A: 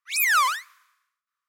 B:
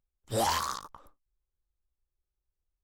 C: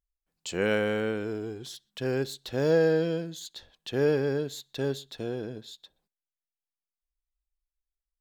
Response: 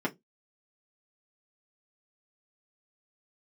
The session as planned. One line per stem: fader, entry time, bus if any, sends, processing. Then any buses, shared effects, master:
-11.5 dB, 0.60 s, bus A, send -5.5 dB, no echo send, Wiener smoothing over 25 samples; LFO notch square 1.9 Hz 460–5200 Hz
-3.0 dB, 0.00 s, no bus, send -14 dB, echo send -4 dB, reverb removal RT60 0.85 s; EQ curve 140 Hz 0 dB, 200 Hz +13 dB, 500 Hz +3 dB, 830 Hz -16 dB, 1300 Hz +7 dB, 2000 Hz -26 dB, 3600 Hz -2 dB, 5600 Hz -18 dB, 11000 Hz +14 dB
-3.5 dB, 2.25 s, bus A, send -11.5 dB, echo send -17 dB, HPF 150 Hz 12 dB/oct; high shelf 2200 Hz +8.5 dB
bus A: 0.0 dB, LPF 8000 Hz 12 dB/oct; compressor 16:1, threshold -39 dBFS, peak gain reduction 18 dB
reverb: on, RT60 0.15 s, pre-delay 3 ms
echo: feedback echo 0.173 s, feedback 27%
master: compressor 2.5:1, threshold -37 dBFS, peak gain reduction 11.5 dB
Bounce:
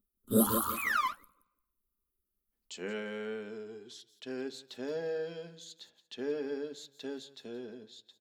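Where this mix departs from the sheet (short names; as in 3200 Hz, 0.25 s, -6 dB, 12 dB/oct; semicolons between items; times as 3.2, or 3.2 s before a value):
stem C -3.5 dB -> -15.0 dB; master: missing compressor 2.5:1, threshold -37 dBFS, peak gain reduction 11.5 dB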